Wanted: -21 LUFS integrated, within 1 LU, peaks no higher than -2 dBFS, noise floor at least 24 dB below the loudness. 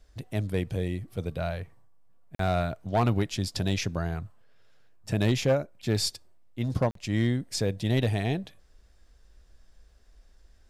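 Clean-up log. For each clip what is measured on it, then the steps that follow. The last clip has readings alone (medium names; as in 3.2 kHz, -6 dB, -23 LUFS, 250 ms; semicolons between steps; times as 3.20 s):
clipped samples 0.3%; clipping level -17.0 dBFS; dropouts 2; longest dropout 43 ms; loudness -29.0 LUFS; peak level -17.0 dBFS; loudness target -21.0 LUFS
-> clip repair -17 dBFS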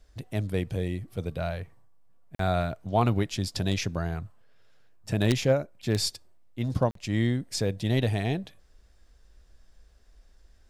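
clipped samples 0.0%; dropouts 2; longest dropout 43 ms
-> interpolate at 2.35/6.91 s, 43 ms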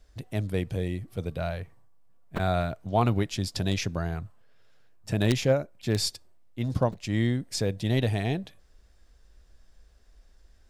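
dropouts 0; loudness -29.0 LUFS; peak level -8.0 dBFS; loudness target -21.0 LUFS
-> trim +8 dB; peak limiter -2 dBFS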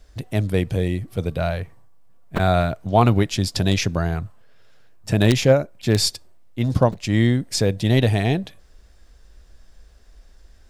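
loudness -21.0 LUFS; peak level -2.0 dBFS; noise floor -51 dBFS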